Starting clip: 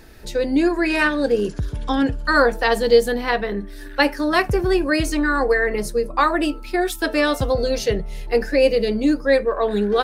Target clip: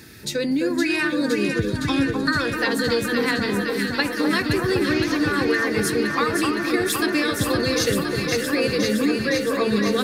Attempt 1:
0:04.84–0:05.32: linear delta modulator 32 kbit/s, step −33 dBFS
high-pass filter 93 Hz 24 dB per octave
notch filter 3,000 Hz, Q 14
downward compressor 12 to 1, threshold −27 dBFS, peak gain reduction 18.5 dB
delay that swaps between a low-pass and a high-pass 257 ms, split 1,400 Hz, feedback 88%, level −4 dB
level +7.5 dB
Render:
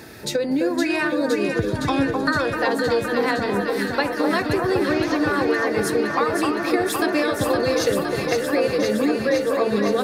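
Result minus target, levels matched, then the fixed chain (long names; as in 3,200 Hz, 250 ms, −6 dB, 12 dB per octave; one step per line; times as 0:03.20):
500 Hz band +2.5 dB
0:04.84–0:05.32: linear delta modulator 32 kbit/s, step −33 dBFS
high-pass filter 93 Hz 24 dB per octave
parametric band 690 Hz −14.5 dB 1.5 octaves
notch filter 3,000 Hz, Q 14
downward compressor 12 to 1, threshold −27 dBFS, peak gain reduction 11.5 dB
delay that swaps between a low-pass and a high-pass 257 ms, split 1,400 Hz, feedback 88%, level −4 dB
level +7.5 dB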